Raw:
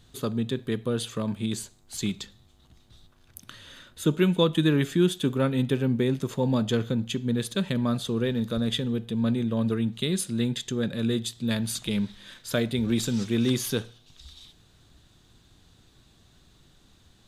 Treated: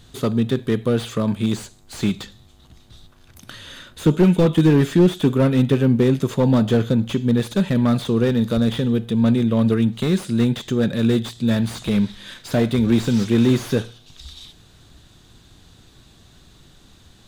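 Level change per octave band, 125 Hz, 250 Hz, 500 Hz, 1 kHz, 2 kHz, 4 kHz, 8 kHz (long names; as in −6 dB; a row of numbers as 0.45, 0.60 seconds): +8.5, +8.5, +7.5, +7.0, +4.5, +1.5, −1.5 decibels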